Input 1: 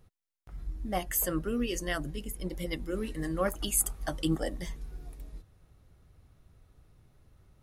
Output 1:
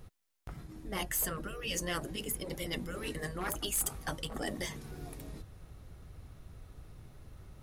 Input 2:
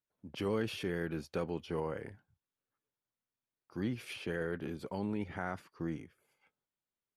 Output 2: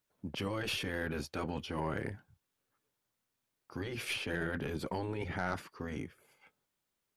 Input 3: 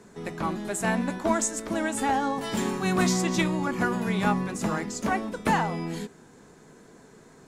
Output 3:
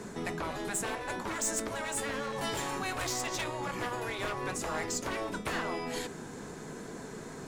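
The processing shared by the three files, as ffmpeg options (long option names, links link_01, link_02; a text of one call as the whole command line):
ffmpeg -i in.wav -af "asoftclip=type=hard:threshold=-21.5dB,areverse,acompressor=threshold=-35dB:ratio=10,areverse,afftfilt=real='re*lt(hypot(re,im),0.0562)':imag='im*lt(hypot(re,im),0.0562)':win_size=1024:overlap=0.75,aeval=exprs='0.0531*(cos(1*acos(clip(val(0)/0.0531,-1,1)))-cos(1*PI/2))+0.0133*(cos(2*acos(clip(val(0)/0.0531,-1,1)))-cos(2*PI/2))+0.00841*(cos(4*acos(clip(val(0)/0.0531,-1,1)))-cos(4*PI/2))+0.00596*(cos(5*acos(clip(val(0)/0.0531,-1,1)))-cos(5*PI/2))':channel_layout=same,volume=5dB" out.wav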